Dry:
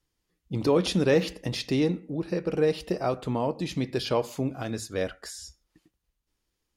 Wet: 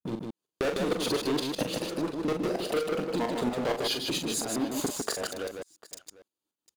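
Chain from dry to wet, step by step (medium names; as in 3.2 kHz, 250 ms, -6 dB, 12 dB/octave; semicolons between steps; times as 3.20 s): slices played last to first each 152 ms, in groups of 4; high-pass 250 Hz 12 dB/octave; peaking EQ 2 kHz -12.5 dB 0.5 oct; band-stop 5.4 kHz, Q 5; waveshaping leveller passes 5; compression 10:1, threshold -32 dBFS, peak gain reduction 17 dB; tremolo saw up 4.3 Hz, depth 90%; multi-tap echo 41/153/749 ms -6.5/-4/-20 dB; trim +6 dB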